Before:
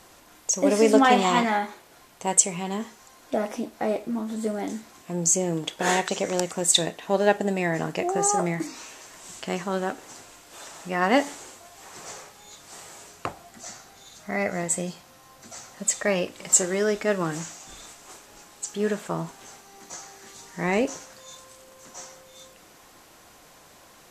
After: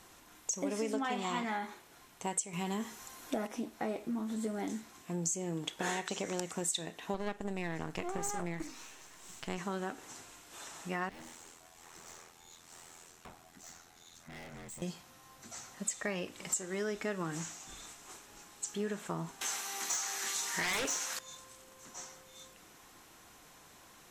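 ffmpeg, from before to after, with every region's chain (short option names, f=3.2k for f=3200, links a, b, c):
-filter_complex "[0:a]asettb=1/sr,asplit=3[a][b][c];[a]atrim=end=2.534[d];[b]atrim=start=2.53:end=3.47,asetpts=PTS-STARTPTS,afade=t=in:d=0.004:c=qsin,afade=t=out:st=0.936:d=0.004:c=qsin,highshelf=f=9.3k:g=7,acontrast=39[e];[c]atrim=start=3.466[f];[d][e]acrossfade=d=0.004:c1=hsin:c2=qsin[g];[g][f]acrossfade=d=0.004:c1=qsin:c2=hsin,asettb=1/sr,asplit=3[h][i][j];[h]atrim=end=7.144[k];[i]atrim=start=7.14:end=9.58,asetpts=PTS-STARTPTS,afade=t=in:d=0.004:c=qsin,afade=t=out:st=2.436:d=0.004:c=qsin,aeval=exprs='if(lt(val(0),0),0.251*val(0),val(0))':c=same,highshelf=f=12k:g=-4[l];[j]atrim=start=9.576[m];[k][l]acrossfade=d=0.004:c1=hsin:c2=qsin[n];[n][m]acrossfade=d=0.004:c1=qsin:c2=hsin,asettb=1/sr,asplit=3[o][p][q];[o]atrim=end=11.094[r];[p]atrim=start=11.09:end=14.82,asetpts=PTS-STARTPTS,afade=t=in:d=0.004:c=qsin,afade=t=out:st=3.726:d=0.004:c=qsin,aeval=exprs='val(0)*sin(2*PI*42*n/s)':c=same,aeval=exprs='(tanh(100*val(0)+0.2)-tanh(0.2))/100':c=same[s];[q]atrim=start=14.816[t];[r][s]acrossfade=d=0.004:c1=hsin:c2=qsin[u];[u][t]acrossfade=d=0.004:c1=qsin:c2=hsin,asettb=1/sr,asplit=3[v][w][x];[v]atrim=end=19.414[y];[w]atrim=start=19.41:end=21.19,asetpts=PTS-STARTPTS,afade=t=in:d=0.004:c=qsin,afade=t=out:st=1.776:d=0.004:c=qsin,highpass=f=1.4k:p=1,aeval=exprs='0.15*sin(PI/2*5.01*val(0)/0.15)':c=same[z];[x]atrim=start=21.186[aa];[y][z]acrossfade=d=0.004:c1=hsin:c2=qsin[ab];[ab][aa]acrossfade=d=0.004:c1=qsin:c2=hsin,equalizer=f=580:t=o:w=0.63:g=-5.5,bandreject=f=4.7k:w=17,acompressor=threshold=-27dB:ratio=6,volume=-5dB"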